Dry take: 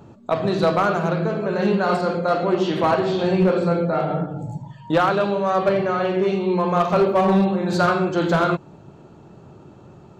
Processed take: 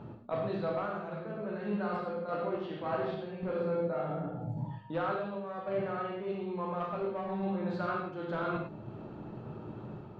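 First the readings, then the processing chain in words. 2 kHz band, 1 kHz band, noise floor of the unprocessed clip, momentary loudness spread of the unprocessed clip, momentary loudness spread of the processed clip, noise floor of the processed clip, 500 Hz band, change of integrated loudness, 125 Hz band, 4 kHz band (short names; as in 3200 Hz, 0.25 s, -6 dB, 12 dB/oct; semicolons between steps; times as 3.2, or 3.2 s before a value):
-16.0 dB, -15.5 dB, -46 dBFS, 6 LU, 11 LU, -46 dBFS, -14.5 dB, -15.5 dB, -14.5 dB, -20.0 dB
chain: high shelf 4200 Hz +9.5 dB; reverse; compressor 6:1, threshold -32 dBFS, peak gain reduction 17 dB; reverse; random-step tremolo; air absorption 390 m; non-linear reverb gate 0.13 s flat, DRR 1.5 dB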